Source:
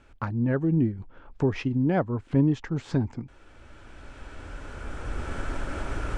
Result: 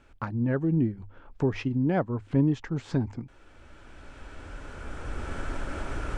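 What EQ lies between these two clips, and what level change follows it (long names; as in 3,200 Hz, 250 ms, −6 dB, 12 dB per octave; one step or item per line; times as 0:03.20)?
mains-hum notches 50/100 Hz
−1.5 dB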